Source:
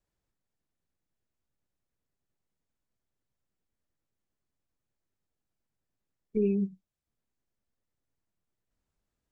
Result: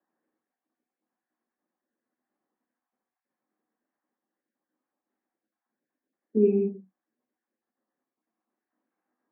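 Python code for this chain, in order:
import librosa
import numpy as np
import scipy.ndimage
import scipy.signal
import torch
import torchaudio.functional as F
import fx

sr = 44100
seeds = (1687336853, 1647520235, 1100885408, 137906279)

y = fx.spec_dropout(x, sr, seeds[0], share_pct=36)
y = fx.cabinet(y, sr, low_hz=210.0, low_slope=24, high_hz=2200.0, hz=(220.0, 320.0, 510.0, 770.0, 1100.0, 1700.0), db=(8, 10, 5, 9, 7, 6))
y = fx.rev_gated(y, sr, seeds[1], gate_ms=160, shape='flat', drr_db=0.5)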